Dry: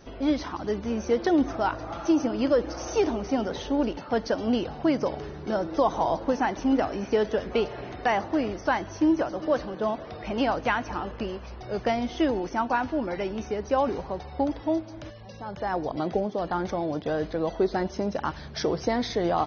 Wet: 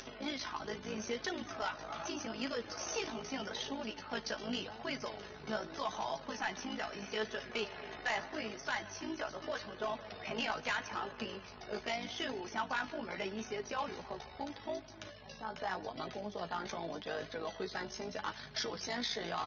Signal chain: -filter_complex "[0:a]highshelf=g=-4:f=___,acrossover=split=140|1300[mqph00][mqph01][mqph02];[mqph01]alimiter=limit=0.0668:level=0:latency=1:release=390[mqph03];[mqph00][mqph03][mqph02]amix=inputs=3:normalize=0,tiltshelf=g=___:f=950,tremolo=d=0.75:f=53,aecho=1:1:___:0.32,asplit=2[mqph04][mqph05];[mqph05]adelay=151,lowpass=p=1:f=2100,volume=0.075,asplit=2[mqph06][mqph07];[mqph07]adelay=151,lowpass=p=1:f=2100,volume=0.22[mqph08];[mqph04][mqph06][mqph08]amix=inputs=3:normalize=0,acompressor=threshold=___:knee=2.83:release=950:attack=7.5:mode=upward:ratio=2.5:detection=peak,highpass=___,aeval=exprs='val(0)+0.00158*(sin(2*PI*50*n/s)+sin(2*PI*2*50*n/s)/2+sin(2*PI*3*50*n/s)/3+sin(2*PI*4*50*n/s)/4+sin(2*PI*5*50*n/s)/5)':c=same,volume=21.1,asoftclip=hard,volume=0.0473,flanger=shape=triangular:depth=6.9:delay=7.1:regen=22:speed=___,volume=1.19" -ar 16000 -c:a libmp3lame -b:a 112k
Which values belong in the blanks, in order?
3800, -7, 4.7, 0.01, 110, 0.81